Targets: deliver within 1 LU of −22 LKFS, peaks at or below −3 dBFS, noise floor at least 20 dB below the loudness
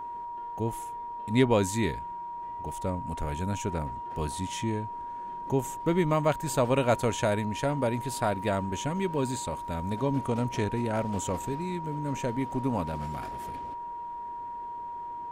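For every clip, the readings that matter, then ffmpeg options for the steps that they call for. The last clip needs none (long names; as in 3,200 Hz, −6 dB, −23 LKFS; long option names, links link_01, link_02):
interfering tone 950 Hz; level of the tone −35 dBFS; integrated loudness −30.5 LKFS; sample peak −11.5 dBFS; target loudness −22.0 LKFS
→ -af "bandreject=frequency=950:width=30"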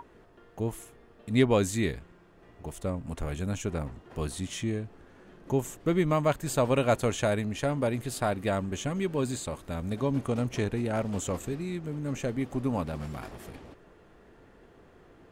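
interfering tone none found; integrated loudness −30.5 LKFS; sample peak −12.0 dBFS; target loudness −22.0 LKFS
→ -af "volume=8.5dB"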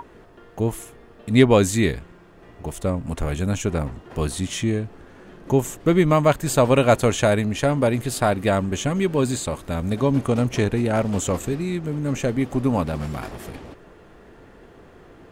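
integrated loudness −22.0 LKFS; sample peak −3.5 dBFS; background noise floor −48 dBFS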